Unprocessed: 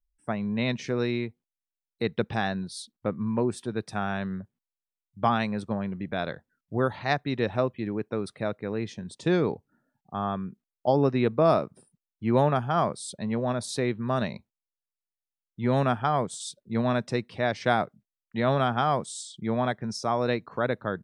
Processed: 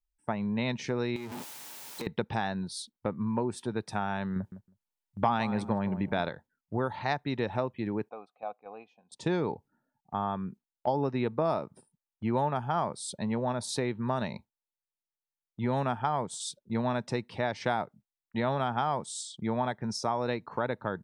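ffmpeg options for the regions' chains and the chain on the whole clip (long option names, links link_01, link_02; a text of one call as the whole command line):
ffmpeg -i in.wav -filter_complex "[0:a]asettb=1/sr,asplit=3[link_01][link_02][link_03];[link_01]atrim=end=1.164[link_04];[link_02]atrim=start=1.16:end=2.07,asetpts=PTS-STARTPTS,afade=type=in:duration=0.004:curve=qsin,afade=type=out:start_time=0.906:duration=0.004:curve=qsin,aeval=exprs='val(0)+0.5*0.0237*sgn(val(0))':channel_layout=same,highpass=150,acompressor=threshold=-33dB:ratio=12:attack=3.2:release=140:knee=1:detection=peak[link_05];[link_03]atrim=start=2.066[link_06];[link_04][link_05]acrossfade=duration=0.004:curve1=hsin:curve2=qsin[link_07];[link_07][link_06]acrossfade=duration=0.004:curve1=qsin:curve2=hsin,asettb=1/sr,asplit=3[link_08][link_09][link_10];[link_08]atrim=end=4.364[link_11];[link_09]atrim=start=4.36:end=6.29,asetpts=PTS-STARTPTS,afade=type=in:duration=0.004:curve=qsin,afade=type=out:start_time=1.926:duration=0.004:curve=qsin,acontrast=53,asplit=2[link_12][link_13];[link_13]adelay=159,lowpass=frequency=1400:poles=1,volume=-14dB,asplit=2[link_14][link_15];[link_15]adelay=159,lowpass=frequency=1400:poles=1,volume=0.22[link_16];[link_12][link_14][link_16]amix=inputs=3:normalize=0,atrim=end_sample=85113[link_17];[link_10]atrim=start=6.286[link_18];[link_11][link_17]acrossfade=duration=0.004:curve1=hsin:curve2=qsin[link_19];[link_19][link_18]acrossfade=duration=0.004:curve1=qsin:curve2=hsin,asettb=1/sr,asplit=3[link_20][link_21][link_22];[link_20]atrim=end=8.094[link_23];[link_21]atrim=start=8.09:end=9.12,asetpts=PTS-STARTPTS,afade=type=in:duration=0.004:curve=qsin,afade=type=out:start_time=1.026:duration=0.004:curve=qsin,asplit=3[link_24][link_25][link_26];[link_24]bandpass=frequency=730:width_type=q:width=8,volume=0dB[link_27];[link_25]bandpass=frequency=1090:width_type=q:width=8,volume=-6dB[link_28];[link_26]bandpass=frequency=2440:width_type=q:width=8,volume=-9dB[link_29];[link_27][link_28][link_29]amix=inputs=3:normalize=0,equalizer=frequency=850:width=7.3:gain=6.5,aecho=1:1:4:0.39,atrim=end_sample=45423[link_30];[link_22]atrim=start=9.116[link_31];[link_23][link_30]acrossfade=duration=0.004:curve1=hsin:curve2=qsin[link_32];[link_32][link_31]acrossfade=duration=0.004:curve1=qsin:curve2=hsin,equalizer=frequency=890:width=6.5:gain=10,agate=range=-6dB:threshold=-46dB:ratio=16:detection=peak,acompressor=threshold=-28dB:ratio=2.5" out.wav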